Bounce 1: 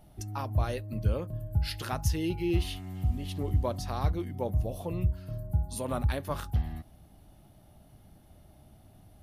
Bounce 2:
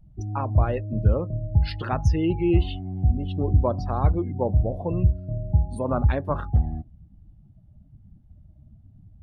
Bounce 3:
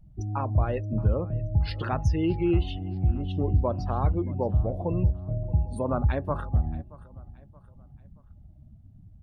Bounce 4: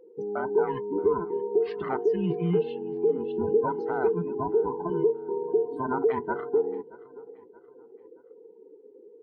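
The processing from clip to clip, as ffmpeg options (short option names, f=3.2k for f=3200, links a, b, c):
-af "lowpass=f=2.1k:p=1,afftdn=nr=25:nf=-46,volume=8dB"
-filter_complex "[0:a]asplit=2[a][b];[b]alimiter=limit=-17.5dB:level=0:latency=1:release=261,volume=1.5dB[c];[a][c]amix=inputs=2:normalize=0,aecho=1:1:626|1252|1878:0.0891|0.0365|0.015,volume=-7.5dB"
-af "afftfilt=real='real(if(between(b,1,1008),(2*floor((b-1)/24)+1)*24-b,b),0)':imag='imag(if(between(b,1,1008),(2*floor((b-1)/24)+1)*24-b,b),0)*if(between(b,1,1008),-1,1)':win_size=2048:overlap=0.75,highpass=140,lowpass=2.1k,volume=-1dB"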